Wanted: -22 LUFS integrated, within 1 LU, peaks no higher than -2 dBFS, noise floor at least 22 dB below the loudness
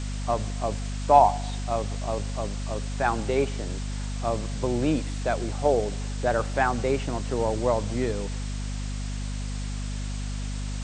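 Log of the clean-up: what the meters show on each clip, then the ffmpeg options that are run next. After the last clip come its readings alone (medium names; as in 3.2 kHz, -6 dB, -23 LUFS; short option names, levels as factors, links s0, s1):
hum 50 Hz; highest harmonic 250 Hz; hum level -29 dBFS; noise floor -31 dBFS; noise floor target -50 dBFS; loudness -27.5 LUFS; peak level -4.0 dBFS; loudness target -22.0 LUFS
-> -af "bandreject=f=50:t=h:w=4,bandreject=f=100:t=h:w=4,bandreject=f=150:t=h:w=4,bandreject=f=200:t=h:w=4,bandreject=f=250:t=h:w=4"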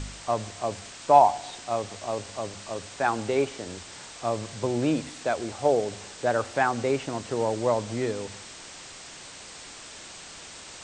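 hum not found; noise floor -44 dBFS; noise floor target -49 dBFS
-> -af "afftdn=nr=6:nf=-44"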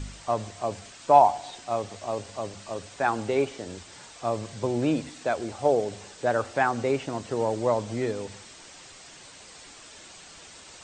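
noise floor -48 dBFS; noise floor target -49 dBFS
-> -af "afftdn=nr=6:nf=-48"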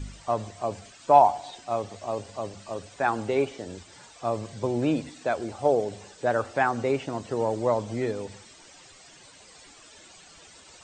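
noise floor -52 dBFS; loudness -27.0 LUFS; peak level -4.5 dBFS; loudness target -22.0 LUFS
-> -af "volume=1.78,alimiter=limit=0.794:level=0:latency=1"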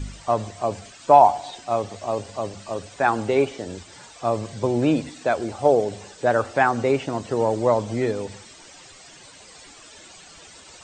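loudness -22.5 LUFS; peak level -2.0 dBFS; noise floor -47 dBFS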